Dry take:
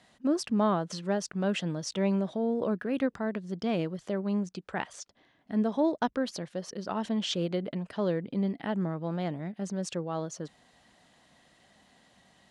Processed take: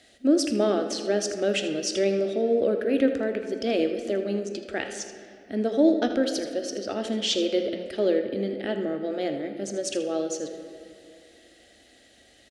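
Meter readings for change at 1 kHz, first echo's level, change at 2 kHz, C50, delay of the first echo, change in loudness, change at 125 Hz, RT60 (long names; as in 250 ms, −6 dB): −1.0 dB, −12.0 dB, +5.0 dB, 6.5 dB, 80 ms, +5.0 dB, can't be measured, 2.4 s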